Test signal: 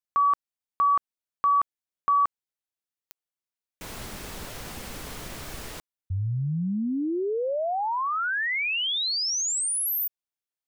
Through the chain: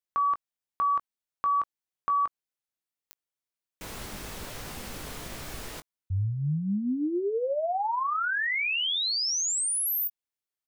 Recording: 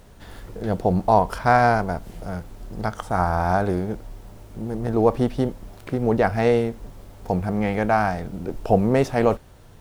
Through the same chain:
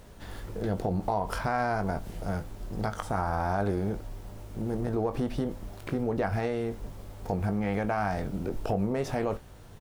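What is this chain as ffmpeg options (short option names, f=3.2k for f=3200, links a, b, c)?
-filter_complex "[0:a]acompressor=threshold=-22dB:ratio=6:attack=1.9:release=154:knee=1:detection=peak,asplit=2[a][b];[b]adelay=20,volume=-10dB[c];[a][c]amix=inputs=2:normalize=0,volume=-1.5dB"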